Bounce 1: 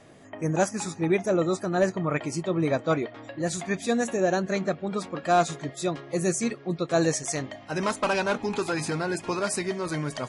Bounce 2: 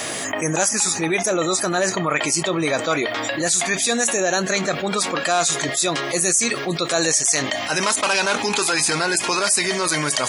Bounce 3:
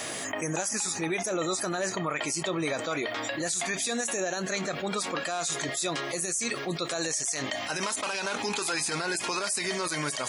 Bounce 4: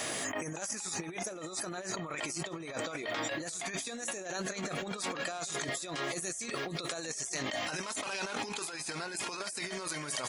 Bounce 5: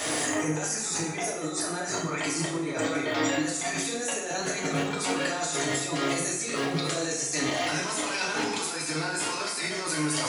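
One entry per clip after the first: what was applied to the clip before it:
spectral tilt +4 dB per octave; envelope flattener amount 70%
brickwall limiter −11.5 dBFS, peak gain reduction 7.5 dB; level −8 dB
single-tap delay 636 ms −18.5 dB; compressor whose output falls as the input rises −33 dBFS, ratio −0.5; level −4 dB
convolution reverb RT60 0.85 s, pre-delay 3 ms, DRR −4.5 dB; level +2.5 dB

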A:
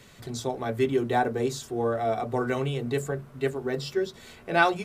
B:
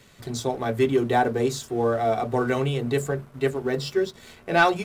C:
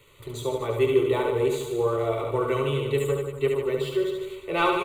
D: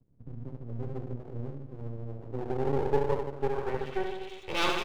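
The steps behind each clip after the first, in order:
leveller curve on the samples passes 1
phaser with its sweep stopped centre 1,100 Hz, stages 8; on a send: reverse bouncing-ball delay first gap 70 ms, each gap 1.15×, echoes 5
low-pass filter sweep 160 Hz → 3,500 Hz, 0:02.05–0:04.41; half-wave rectification; level −3 dB

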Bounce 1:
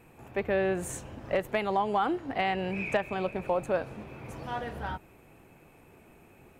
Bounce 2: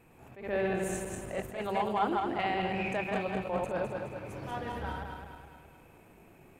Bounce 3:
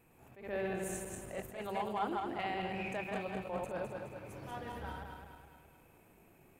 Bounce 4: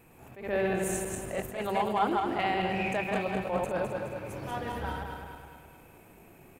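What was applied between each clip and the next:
feedback delay that plays each chunk backwards 105 ms, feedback 70%, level −3 dB; level that may rise only so fast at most 110 dB per second; level −4 dB
high-shelf EQ 9,300 Hz +9.5 dB; level −6.5 dB
far-end echo of a speakerphone 310 ms, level −14 dB; level +8.5 dB

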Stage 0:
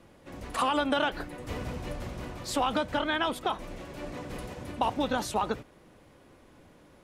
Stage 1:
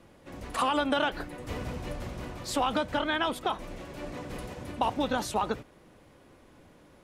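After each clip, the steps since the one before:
no processing that can be heard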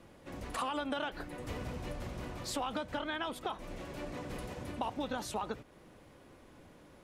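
downward compressor 2 to 1, threshold −38 dBFS, peak gain reduction 9 dB
level −1 dB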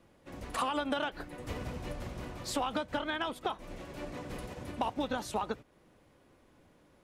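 hard clipping −25 dBFS, distortion −34 dB
expander for the loud parts 1.5 to 1, over −54 dBFS
level +4.5 dB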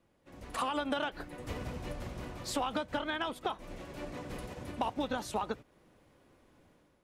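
automatic gain control gain up to 8 dB
level −8.5 dB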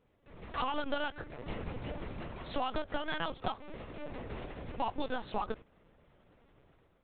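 linear-prediction vocoder at 8 kHz pitch kept

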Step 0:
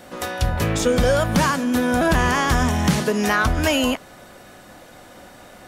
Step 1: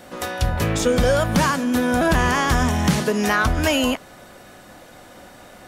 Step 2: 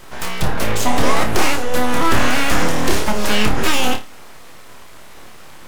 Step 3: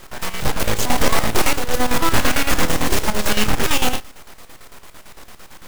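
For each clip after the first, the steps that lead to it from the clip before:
no processing that can be heard
full-wave rectification; flutter between parallel walls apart 4.8 metres, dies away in 0.25 s; level +4 dB
log-companded quantiser 4 bits; square-wave tremolo 8.9 Hz, depth 65%, duty 60%; level −1 dB

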